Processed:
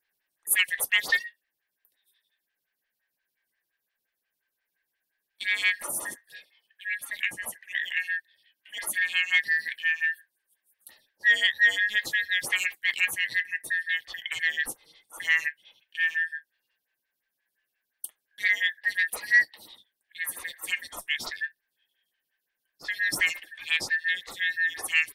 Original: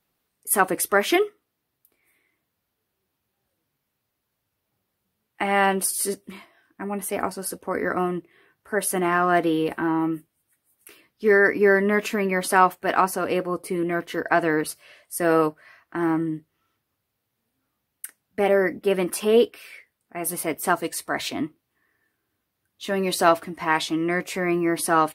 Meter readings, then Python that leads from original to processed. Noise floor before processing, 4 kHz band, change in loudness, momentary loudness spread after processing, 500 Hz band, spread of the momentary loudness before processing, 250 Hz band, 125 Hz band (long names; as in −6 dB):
−79 dBFS, +4.0 dB, −3.0 dB, 14 LU, −29.0 dB, 13 LU, below −25 dB, below −20 dB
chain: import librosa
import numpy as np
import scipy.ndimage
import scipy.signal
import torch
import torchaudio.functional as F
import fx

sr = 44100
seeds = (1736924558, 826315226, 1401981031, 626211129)

y = fx.band_shuffle(x, sr, order='4123')
y = 10.0 ** (-9.5 / 20.0) * np.tanh(y / 10.0 ** (-9.5 / 20.0))
y = fx.stagger_phaser(y, sr, hz=5.7)